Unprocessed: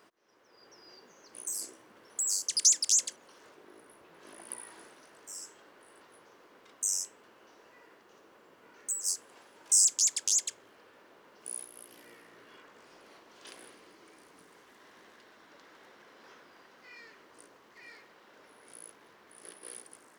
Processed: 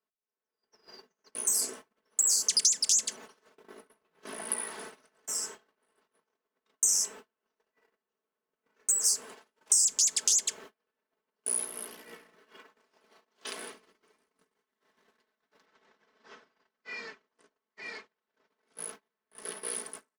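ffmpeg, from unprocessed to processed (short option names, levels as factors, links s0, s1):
-filter_complex "[0:a]asettb=1/sr,asplit=3[s0][s1][s2];[s0]atrim=end=12.374[s3];[s1]atrim=start=12.37:end=13.72,asetpts=PTS-STARTPTS,afade=t=in:d=0.004:c=qsin,afade=t=out:st=1.346:d=0.004:c=qsin,highpass=f=180:p=1[s4];[s2]atrim=start=13.716[s5];[s3][s4]acrossfade=d=0.004:c1=hsin:c2=qsin[s6];[s6][s5]acrossfade=d=0.004:c1=qsin:c2=hsin,asplit=3[s7][s8][s9];[s7]afade=t=out:st=15.65:d=0.02[s10];[s8]lowpass=f=7700:w=0.5412,lowpass=f=7700:w=1.3066,afade=t=in:st=15.65:d=0.02,afade=t=out:st=18.76:d=0.02[s11];[s9]afade=t=in:st=18.76:d=0.02[s12];[s10][s11][s12]amix=inputs=3:normalize=0,agate=range=0.01:threshold=0.00224:ratio=16:detection=peak,aecho=1:1:4.6:0.69,acrossover=split=180[s13][s14];[s14]acompressor=threshold=0.0282:ratio=6[s15];[s13][s15]amix=inputs=2:normalize=0,volume=2.66"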